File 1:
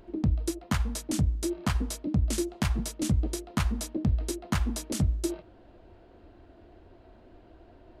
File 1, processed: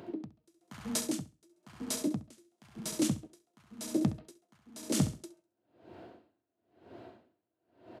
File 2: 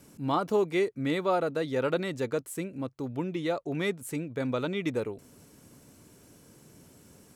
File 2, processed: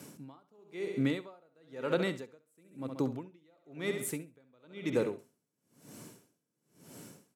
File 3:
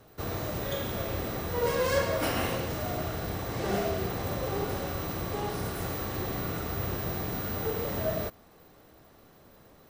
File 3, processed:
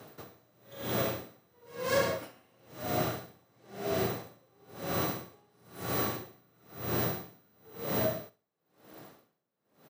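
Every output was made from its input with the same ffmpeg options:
-af "highpass=f=120:w=0.5412,highpass=f=120:w=1.3066,acompressor=threshold=-35dB:ratio=2,aecho=1:1:67|134|201|268|335:0.316|0.152|0.0729|0.035|0.0168,aeval=exprs='val(0)*pow(10,-38*(0.5-0.5*cos(2*PI*1*n/s))/20)':c=same,volume=6.5dB"

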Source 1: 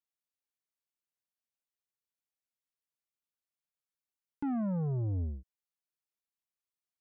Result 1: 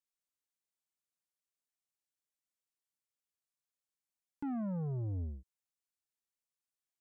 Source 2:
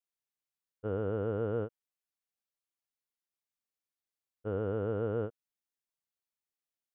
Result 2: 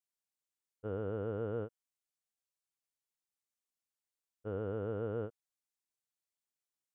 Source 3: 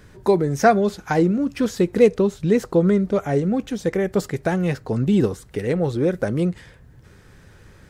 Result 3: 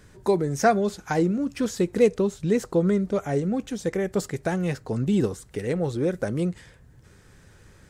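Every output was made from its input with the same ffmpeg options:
-af "equalizer=f=7.8k:w=1.1:g=6,volume=-4.5dB"

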